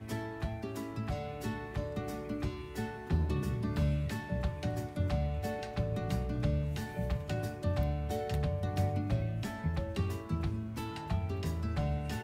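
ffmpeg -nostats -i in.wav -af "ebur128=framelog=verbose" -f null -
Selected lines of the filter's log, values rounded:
Integrated loudness:
  I:         -35.5 LUFS
  Threshold: -45.5 LUFS
Loudness range:
  LRA:         2.2 LU
  Threshold: -55.2 LUFS
  LRA low:   -36.6 LUFS
  LRA high:  -34.5 LUFS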